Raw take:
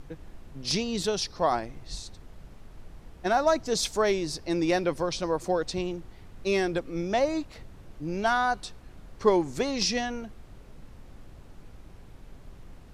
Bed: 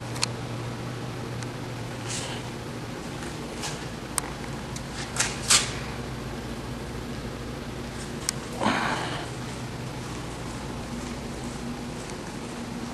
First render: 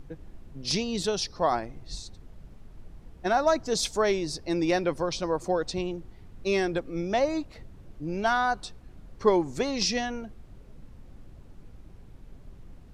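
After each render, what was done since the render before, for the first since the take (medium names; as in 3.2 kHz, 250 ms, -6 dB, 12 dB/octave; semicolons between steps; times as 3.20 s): noise reduction 6 dB, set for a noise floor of -50 dBFS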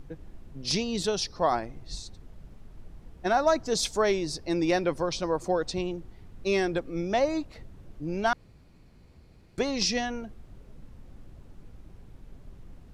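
8.33–9.58 s: room tone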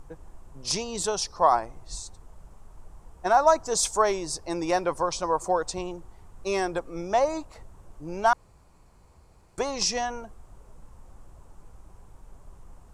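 graphic EQ 125/250/1000/2000/4000/8000 Hz -4/-7/+10/-4/-6/+11 dB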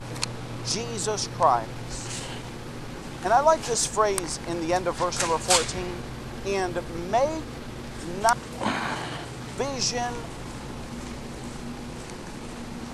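add bed -2.5 dB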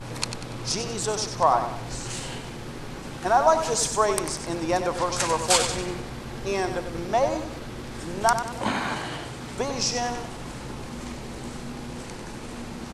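feedback delay 95 ms, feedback 42%, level -9 dB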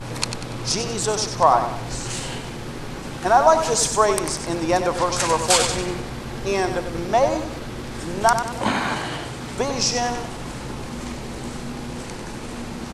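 trim +4.5 dB; peak limiter -3 dBFS, peak gain reduction 2.5 dB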